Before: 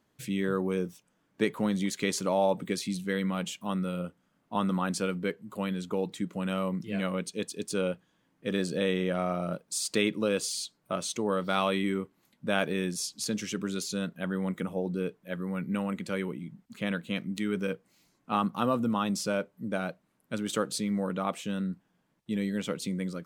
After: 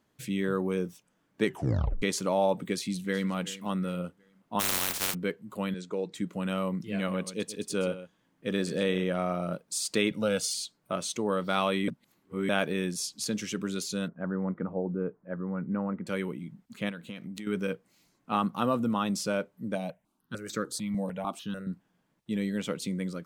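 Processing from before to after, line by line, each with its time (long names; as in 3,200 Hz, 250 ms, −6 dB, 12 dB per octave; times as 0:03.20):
0:01.45: tape stop 0.57 s
0:02.63–0:03.31: delay throw 370 ms, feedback 35%, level −16.5 dB
0:04.59–0:05.13: compressing power law on the bin magnitudes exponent 0.11
0:05.74–0:06.15: loudspeaker in its box 190–8,200 Hz, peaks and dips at 240 Hz −10 dB, 820 Hz −8 dB, 1,200 Hz −5 dB, 3,000 Hz −8 dB
0:06.95–0:09.04: single-tap delay 128 ms −13.5 dB
0:10.11–0:10.54: comb filter 1.4 ms, depth 78%
0:11.88–0:12.49: reverse
0:14.08–0:16.07: inverse Chebyshev low-pass filter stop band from 8,000 Hz, stop band 80 dB
0:16.89–0:17.47: downward compressor, threshold −36 dBFS
0:19.75–0:21.67: step-sequenced phaser 6.7 Hz 370–3,000 Hz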